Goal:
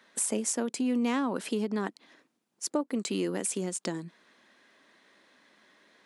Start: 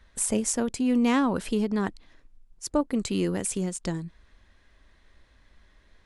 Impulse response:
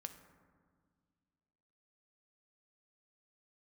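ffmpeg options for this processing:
-af "highpass=f=210:w=0.5412,highpass=f=210:w=1.3066,acompressor=threshold=-35dB:ratio=2,volume=3.5dB"

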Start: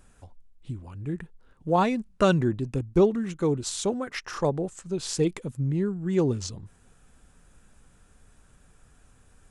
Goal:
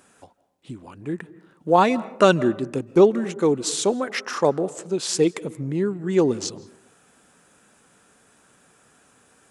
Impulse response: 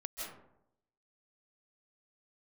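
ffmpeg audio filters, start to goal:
-filter_complex "[0:a]highpass=250,asplit=2[a][b];[1:a]atrim=start_sample=2205,highshelf=f=4.1k:g=-8[c];[b][c]afir=irnorm=-1:irlink=0,volume=-15.5dB[d];[a][d]amix=inputs=2:normalize=0,volume=6dB"

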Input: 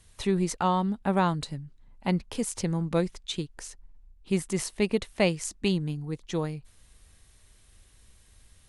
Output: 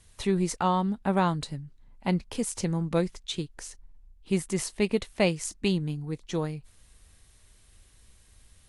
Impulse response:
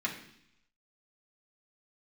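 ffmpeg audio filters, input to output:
-ar 32000 -c:a libvorbis -b:a 64k

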